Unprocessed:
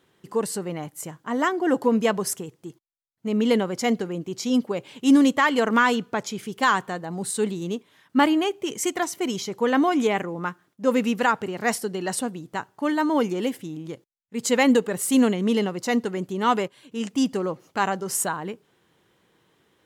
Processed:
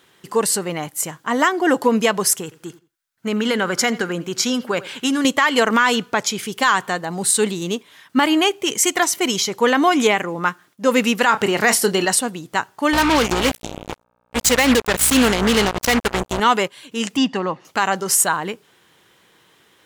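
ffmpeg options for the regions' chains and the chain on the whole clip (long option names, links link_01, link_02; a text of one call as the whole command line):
ffmpeg -i in.wav -filter_complex "[0:a]asettb=1/sr,asplit=3[link_01][link_02][link_03];[link_01]atrim=end=2.434[link_04];[link_02]atrim=start=2.43:end=5.25,asetpts=PTS-STARTPTS,afade=type=in:duration=0.004:curve=qsin,afade=type=out:start_time=2.816:duration=0.004:curve=qsin,equalizer=frequency=1500:width_type=o:width=0.51:gain=10,acompressor=threshold=-21dB:ratio=10:attack=3.2:release=140:knee=1:detection=peak,asplit=2[link_05][link_06];[link_06]adelay=85,lowpass=frequency=4800:poles=1,volume=-18dB,asplit=2[link_07][link_08];[link_08]adelay=85,lowpass=frequency=4800:poles=1,volume=0.23[link_09];[link_05][link_07][link_09]amix=inputs=3:normalize=0,atrim=end_sample=124362[link_10];[link_03]atrim=start=5.246[link_11];[link_04][link_10]acrossfade=duration=0.004:curve1=hsin:curve2=qsin[link_12];[link_12][link_11]acrossfade=duration=0.004:curve1=qsin:curve2=hsin,asettb=1/sr,asplit=3[link_13][link_14][link_15];[link_13]atrim=end=11.264[link_16];[link_14]atrim=start=11.26:end=12.05,asetpts=PTS-STARTPTS,afade=type=in:duration=0.004:curve=qsin,afade=type=out:start_time=0.786:duration=0.004:curve=qsin,asplit=2[link_17][link_18];[link_18]adelay=30,volume=-12.5dB[link_19];[link_17][link_19]amix=inputs=2:normalize=0,atrim=end_sample=34839,acontrast=39[link_20];[link_15]atrim=start=12.046[link_21];[link_16][link_20]acrossfade=duration=0.004:curve1=hsin:curve2=qsin[link_22];[link_22][link_21]acrossfade=duration=0.004:curve1=qsin:curve2=hsin,asettb=1/sr,asplit=3[link_23][link_24][link_25];[link_23]atrim=end=12.934[link_26];[link_24]atrim=start=12.93:end=16.4,asetpts=PTS-STARTPTS,afade=type=in:duration=0.004:curve=qsin,afade=type=out:start_time=3.466:duration=0.004:curve=qsin,aeval=exprs='val(0)+0.0251*(sin(2*PI*60*n/s)+sin(2*PI*2*60*n/s)/2+sin(2*PI*3*60*n/s)/3+sin(2*PI*4*60*n/s)/4+sin(2*PI*5*60*n/s)/5)':channel_layout=same,acrusher=bits=3:mix=0:aa=0.5[link_27];[link_25]atrim=start=16.396[link_28];[link_26][link_27]acrossfade=duration=0.004:curve1=hsin:curve2=qsin[link_29];[link_29][link_28]acrossfade=duration=0.004:curve1=qsin:curve2=hsin,asettb=1/sr,asplit=3[link_30][link_31][link_32];[link_30]atrim=end=17.174[link_33];[link_31]atrim=start=17.17:end=17.65,asetpts=PTS-STARTPTS,afade=type=in:duration=0.004:curve=qsin,afade=type=out:start_time=0.476:duration=0.004:curve=qsin,highpass=150,lowpass=3400,aecho=1:1:1.1:0.41,atrim=end_sample=21168[link_34];[link_32]atrim=start=17.646[link_35];[link_33][link_34]acrossfade=duration=0.004:curve1=hsin:curve2=qsin[link_36];[link_36][link_35]acrossfade=duration=0.004:curve1=qsin:curve2=hsin,tiltshelf=frequency=790:gain=-5,alimiter=limit=-13dB:level=0:latency=1:release=123,volume=8dB" out.wav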